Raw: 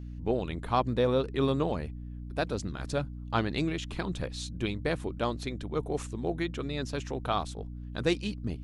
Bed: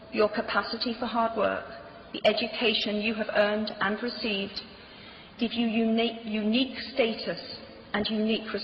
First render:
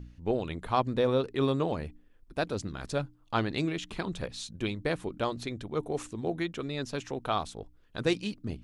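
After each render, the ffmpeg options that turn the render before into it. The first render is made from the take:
-af "bandreject=f=60:t=h:w=4,bandreject=f=120:t=h:w=4,bandreject=f=180:t=h:w=4,bandreject=f=240:t=h:w=4,bandreject=f=300:t=h:w=4"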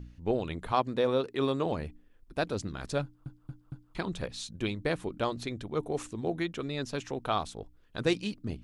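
-filter_complex "[0:a]asettb=1/sr,asplit=3[a][b][c];[a]atrim=end=0.724[d];[b]atrim=start=0.72:end=1.66,asetpts=PTS-STARTPTS,afade=t=in:d=0.004:c=qsin,afade=t=out:st=0.936:d=0.004:c=qsin,highpass=f=210:p=1[e];[c]atrim=start=1.656[f];[d][e]acrossfade=d=0.004:c1=hsin:c2=qsin[g];[g][f]acrossfade=d=0.004:c1=qsin:c2=hsin,asplit=5[h][i][j][k][l];[h]atrim=end=3.262[m];[i]atrim=start=3.028:end=3.262[n];[j]atrim=start=3.028:end=3.262[o];[k]atrim=start=3.028:end=3.262[p];[l]atrim=start=3.948[q];[m][n]acrossfade=d=0.004:c1=hsin:c2=hsin[r];[r][o]acrossfade=d=0.004:c1=hsin:c2=hsin[s];[s][p]acrossfade=d=0.004:c1=hsin:c2=hsin[t];[t][q]acrossfade=d=0.004:c1=hsin:c2=hsin"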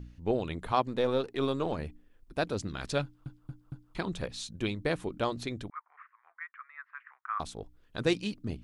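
-filter_complex "[0:a]asettb=1/sr,asplit=3[a][b][c];[a]atrim=end=0.864[d];[b]atrim=start=0.86:end=1.79,asetpts=PTS-STARTPTS,afade=t=in:d=0.004:c=qsin,afade=t=out:st=0.926:d=0.004:c=qsin,aeval=exprs='if(lt(val(0),0),0.708*val(0),val(0))':c=same[e];[c]atrim=start=1.786[f];[d][e]acrossfade=d=0.004:c1=hsin:c2=qsin[g];[g][f]acrossfade=d=0.004:c1=qsin:c2=hsin,asettb=1/sr,asplit=3[h][i][j];[h]atrim=end=2.694[k];[i]atrim=start=2.69:end=3.4,asetpts=PTS-STARTPTS,afade=t=in:d=0.004:c=qsin,afade=t=out:st=0.706:d=0.004:c=qsin,equalizer=f=3k:t=o:w=1.8:g=5.5[l];[j]atrim=start=3.396[m];[k][l]acrossfade=d=0.004:c1=hsin:c2=qsin[n];[n][m]acrossfade=d=0.004:c1=qsin:c2=hsin,asettb=1/sr,asplit=3[o][p][q];[o]atrim=end=5.704[r];[p]atrim=start=5.7:end=7.4,asetpts=PTS-STARTPTS,afade=t=in:d=0.004:c=qsin,afade=t=out:st=1.696:d=0.004:c=qsin,asuperpass=centerf=1500:order=8:qfactor=1.5[s];[q]atrim=start=7.396[t];[r][s]acrossfade=d=0.004:c1=hsin:c2=qsin[u];[u][t]acrossfade=d=0.004:c1=qsin:c2=hsin"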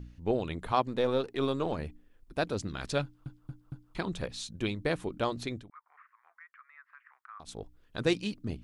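-filter_complex "[0:a]asplit=3[a][b][c];[a]afade=t=out:st=5.59:d=0.02[d];[b]acompressor=threshold=-56dB:ratio=2:attack=3.2:release=140:knee=1:detection=peak,afade=t=in:st=5.59:d=0.02,afade=t=out:st=7.47:d=0.02[e];[c]afade=t=in:st=7.47:d=0.02[f];[d][e][f]amix=inputs=3:normalize=0"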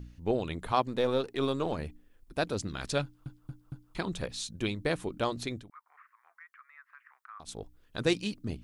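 -af "highshelf=f=5.8k:g=6"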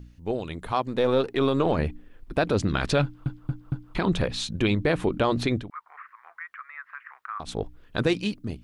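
-filter_complex "[0:a]acrossover=split=3700[a][b];[a]dynaudnorm=f=440:g=5:m=14.5dB[c];[c][b]amix=inputs=2:normalize=0,alimiter=limit=-12.5dB:level=0:latency=1:release=58"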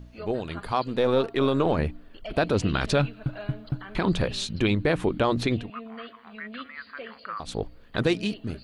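-filter_complex "[1:a]volume=-16dB[a];[0:a][a]amix=inputs=2:normalize=0"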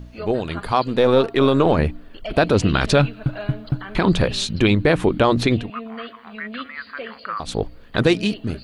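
-af "volume=7dB"

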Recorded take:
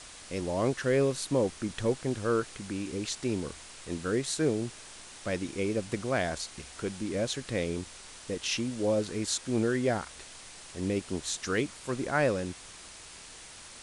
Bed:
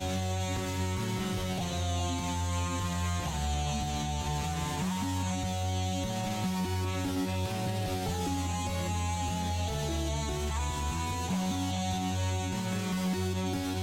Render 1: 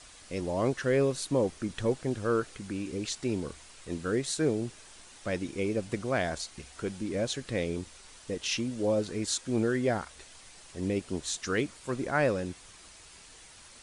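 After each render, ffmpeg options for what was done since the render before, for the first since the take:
-af "afftdn=nr=6:nf=-48"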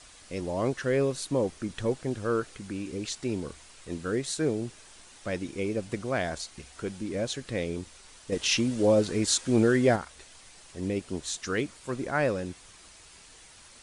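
-filter_complex "[0:a]asettb=1/sr,asplit=3[a][b][c];[a]atrim=end=8.324[d];[b]atrim=start=8.32:end=9.96,asetpts=PTS-STARTPTS,afade=t=in:d=0.004:c=qsin,afade=t=out:st=1.636:d=0.004:c=qsin,acontrast=45[e];[c]atrim=start=9.956[f];[d][e]acrossfade=d=0.004:c1=hsin:c2=qsin[g];[g][f]acrossfade=d=0.004:c1=qsin:c2=hsin"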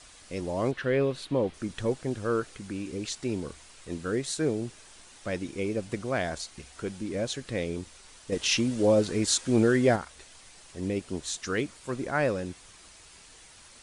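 -filter_complex "[0:a]asettb=1/sr,asplit=3[a][b][c];[a]atrim=end=0.714[d];[b]atrim=start=0.71:end=1.54,asetpts=PTS-STARTPTS,afade=t=in:d=0.004:c=qsin,afade=t=out:st=0.826:d=0.004:c=qsin,highshelf=f=4.7k:t=q:w=1.5:g=-9.5[e];[c]atrim=start=1.536[f];[d][e]acrossfade=d=0.004:c1=hsin:c2=qsin[g];[g][f]acrossfade=d=0.004:c1=qsin:c2=hsin"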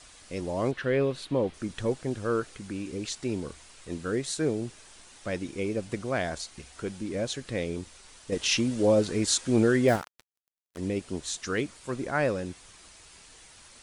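-filter_complex "[0:a]asettb=1/sr,asplit=3[a][b][c];[a]atrim=end=9.884[d];[b]atrim=start=9.88:end=10.78,asetpts=PTS-STARTPTS,afade=t=in:d=0.004:c=qsin,afade=t=out:st=0.896:d=0.004:c=qsin,acrusher=bits=5:mix=0:aa=0.5[e];[c]atrim=start=10.776[f];[d][e]acrossfade=d=0.004:c1=hsin:c2=qsin[g];[g][f]acrossfade=d=0.004:c1=qsin:c2=hsin"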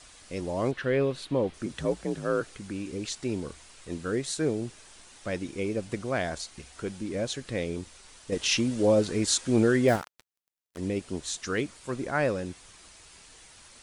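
-filter_complex "[0:a]asettb=1/sr,asplit=3[a][b][c];[a]atrim=end=1.664[d];[b]atrim=start=1.66:end=2.41,asetpts=PTS-STARTPTS,afade=t=in:d=0.004:c=qsin,afade=t=out:st=0.746:d=0.004:c=qsin,afreqshift=47[e];[c]atrim=start=2.406[f];[d][e]acrossfade=d=0.004:c1=hsin:c2=qsin[g];[g][f]acrossfade=d=0.004:c1=qsin:c2=hsin"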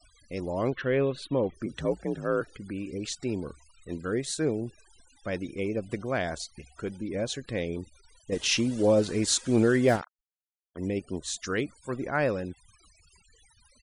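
-af "afftfilt=real='re*gte(hypot(re,im),0.00501)':imag='im*gte(hypot(re,im),0.00501)':win_size=1024:overlap=0.75"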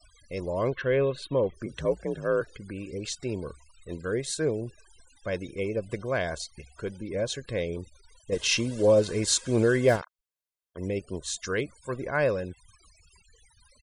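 -af "aecho=1:1:1.9:0.42"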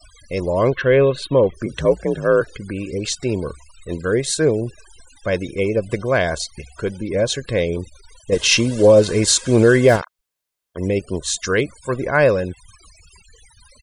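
-af "volume=10.5dB,alimiter=limit=-3dB:level=0:latency=1"

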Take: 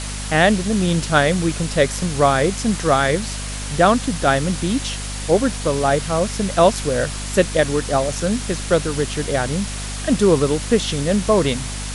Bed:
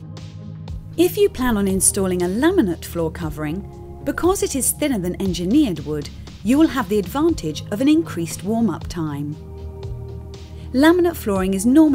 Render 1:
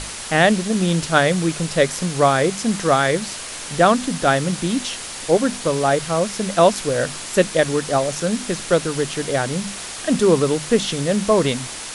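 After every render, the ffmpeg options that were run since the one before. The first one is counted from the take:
-af "bandreject=f=50:t=h:w=6,bandreject=f=100:t=h:w=6,bandreject=f=150:t=h:w=6,bandreject=f=200:t=h:w=6,bandreject=f=250:t=h:w=6"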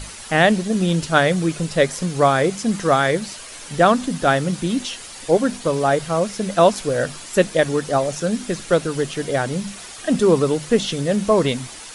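-af "afftdn=nr=8:nf=-32"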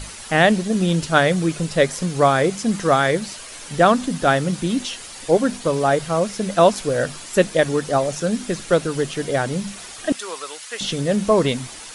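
-filter_complex "[0:a]asettb=1/sr,asplit=3[a][b][c];[a]atrim=end=10.124[d];[b]atrim=start=10.12:end=10.81,asetpts=PTS-STARTPTS,afade=t=in:d=0.004:c=qsin,afade=t=out:st=0.686:d=0.004:c=qsin,highpass=1.3k[e];[c]atrim=start=10.806[f];[d][e]acrossfade=d=0.004:c1=hsin:c2=qsin[g];[g][f]acrossfade=d=0.004:c1=qsin:c2=hsin"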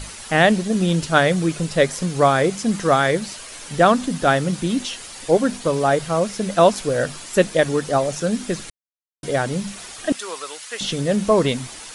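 -filter_complex "[0:a]asplit=3[a][b][c];[a]atrim=end=8.7,asetpts=PTS-STARTPTS,afade=t=out:st=8.696:d=0.004:c=hsin[d];[b]atrim=start=8.7:end=9.23,asetpts=PTS-STARTPTS,volume=0[e];[c]atrim=start=9.23,asetpts=PTS-STARTPTS,afade=t=in:d=0.004:c=hsin[f];[d][e][f]concat=n=3:v=0:a=1"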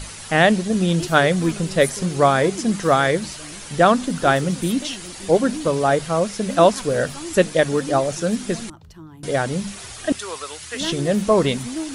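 -filter_complex "[1:a]volume=-16.5dB[a];[0:a][a]amix=inputs=2:normalize=0"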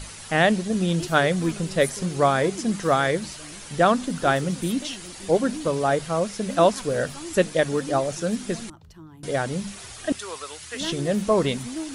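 -af "volume=-4dB"

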